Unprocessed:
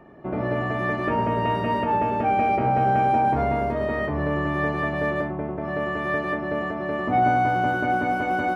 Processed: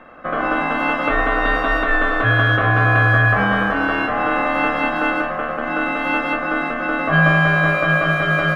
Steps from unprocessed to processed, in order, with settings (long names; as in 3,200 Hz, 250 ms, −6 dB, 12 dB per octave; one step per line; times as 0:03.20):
ring modulation 900 Hz
notch filter 980 Hz, Q 20
on a send: feedback echo with a high-pass in the loop 356 ms, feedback 69%, high-pass 170 Hz, level −15.5 dB
on the sum: level +8.5 dB